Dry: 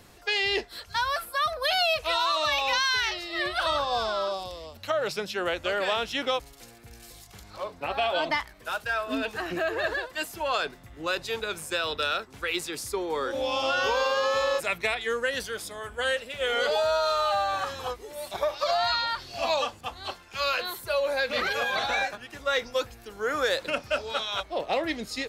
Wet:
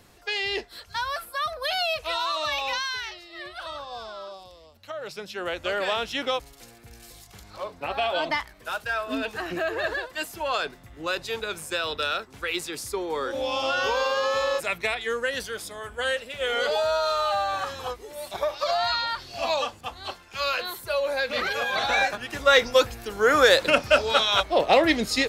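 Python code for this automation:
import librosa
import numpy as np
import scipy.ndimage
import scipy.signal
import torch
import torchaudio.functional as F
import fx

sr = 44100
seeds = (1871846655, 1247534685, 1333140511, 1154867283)

y = fx.gain(x, sr, db=fx.line((2.66, -2.0), (3.25, -10.0), (4.83, -10.0), (5.69, 0.5), (21.67, 0.5), (22.32, 9.0)))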